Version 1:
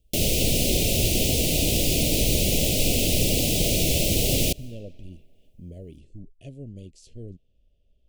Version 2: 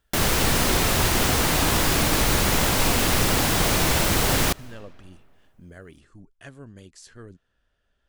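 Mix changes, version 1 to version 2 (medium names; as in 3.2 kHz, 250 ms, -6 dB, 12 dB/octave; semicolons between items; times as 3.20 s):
speech: add tilt EQ +2 dB/octave; master: remove Chebyshev band-stop 610–2600 Hz, order 3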